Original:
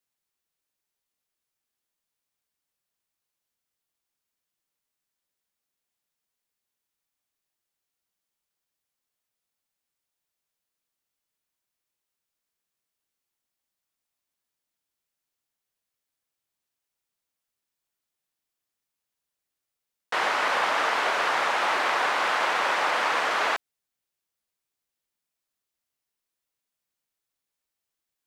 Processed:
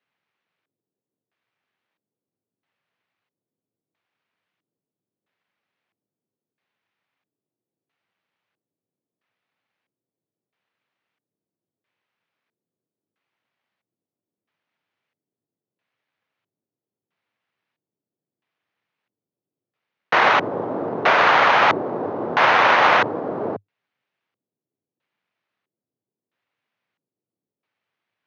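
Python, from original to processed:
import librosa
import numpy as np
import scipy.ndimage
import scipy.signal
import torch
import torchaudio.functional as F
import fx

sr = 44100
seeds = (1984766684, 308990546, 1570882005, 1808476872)

y = fx.halfwave_hold(x, sr)
y = fx.filter_lfo_lowpass(y, sr, shape='square', hz=0.76, low_hz=360.0, high_hz=2400.0, q=1.4)
y = scipy.signal.sosfilt(scipy.signal.cheby1(5, 1.0, [100.0, 6500.0], 'bandpass', fs=sr, output='sos'), y)
y = y * librosa.db_to_amplitude(5.5)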